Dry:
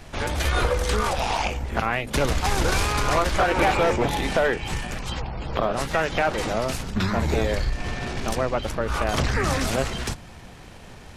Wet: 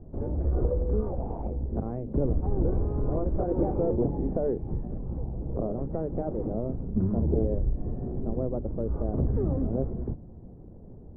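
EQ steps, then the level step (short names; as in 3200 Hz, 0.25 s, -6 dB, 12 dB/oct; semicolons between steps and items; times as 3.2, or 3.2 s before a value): ladder low-pass 540 Hz, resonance 20%; +3.5 dB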